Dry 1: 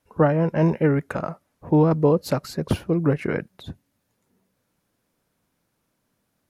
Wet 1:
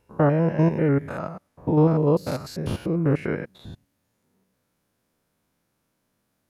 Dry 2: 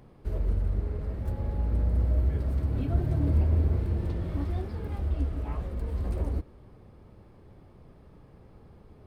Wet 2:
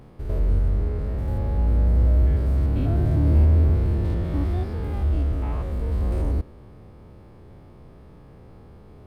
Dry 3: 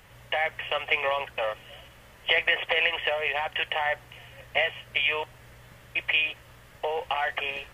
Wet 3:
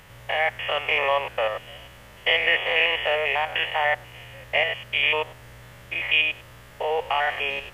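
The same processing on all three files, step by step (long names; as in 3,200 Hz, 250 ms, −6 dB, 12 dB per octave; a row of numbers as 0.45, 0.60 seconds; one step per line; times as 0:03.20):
spectrum averaged block by block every 100 ms
loudness normalisation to −23 LKFS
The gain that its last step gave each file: +0.5, +7.5, +6.5 decibels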